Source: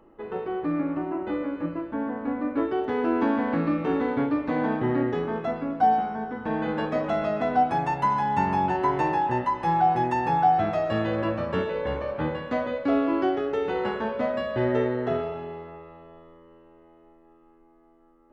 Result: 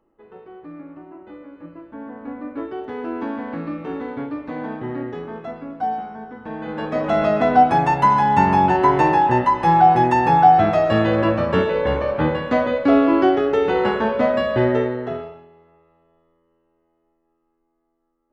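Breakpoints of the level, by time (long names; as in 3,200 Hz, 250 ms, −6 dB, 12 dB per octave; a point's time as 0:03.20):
0:01.46 −11 dB
0:02.24 −3.5 dB
0:06.59 −3.5 dB
0:07.21 +8.5 dB
0:14.54 +8.5 dB
0:15.24 −3 dB
0:15.50 −13.5 dB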